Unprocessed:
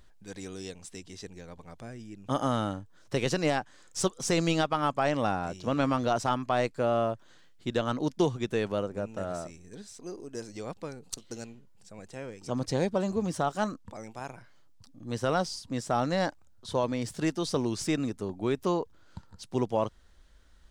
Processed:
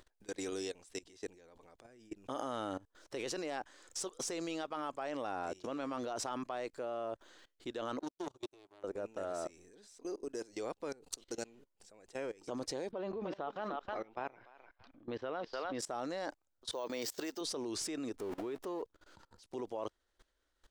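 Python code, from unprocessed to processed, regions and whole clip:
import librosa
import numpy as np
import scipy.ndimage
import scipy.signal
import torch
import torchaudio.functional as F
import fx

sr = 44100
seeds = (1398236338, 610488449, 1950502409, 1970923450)

y = fx.chain(x, sr, fx.fixed_phaser(hz=330.0, stages=8),
    fx.power_curve(exponent=2.0), at=(7.99, 8.84))
y = fx.chain(y, sr, fx.lowpass(hz=3500.0, slope=24),
    fx.echo_thinned(ms=301, feedback_pct=18, hz=850.0, wet_db=-7.0), at=(12.91, 15.79))
y = fx.chain(y, sr, fx.lowpass(hz=5800.0, slope=12),
    fx.bass_treble(bass_db=-11, treble_db=9),
    fx.resample_bad(factor=2, down='none', up='hold'), at=(16.72, 17.41))
y = fx.chain(y, sr, fx.zero_step(step_db=-37.0),
    fx.high_shelf(hz=3700.0, db=-7.5), at=(18.16, 18.82))
y = fx.low_shelf_res(y, sr, hz=240.0, db=-10.5, q=1.5)
y = fx.level_steps(y, sr, step_db=21)
y = F.gain(torch.from_numpy(y), 3.0).numpy()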